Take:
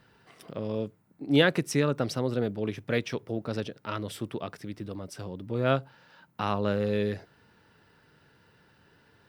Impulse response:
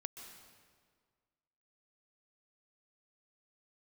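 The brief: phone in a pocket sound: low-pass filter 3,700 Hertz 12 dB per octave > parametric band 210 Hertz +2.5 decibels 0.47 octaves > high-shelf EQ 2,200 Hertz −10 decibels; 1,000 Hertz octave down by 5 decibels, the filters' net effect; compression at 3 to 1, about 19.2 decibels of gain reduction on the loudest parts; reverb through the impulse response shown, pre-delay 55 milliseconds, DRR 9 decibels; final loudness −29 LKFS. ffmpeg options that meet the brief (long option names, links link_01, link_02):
-filter_complex "[0:a]equalizer=frequency=1000:width_type=o:gain=-4.5,acompressor=threshold=-44dB:ratio=3,asplit=2[link_01][link_02];[1:a]atrim=start_sample=2205,adelay=55[link_03];[link_02][link_03]afir=irnorm=-1:irlink=0,volume=-6dB[link_04];[link_01][link_04]amix=inputs=2:normalize=0,lowpass=3700,equalizer=frequency=210:width_type=o:width=0.47:gain=2.5,highshelf=frequency=2200:gain=-10,volume=15.5dB"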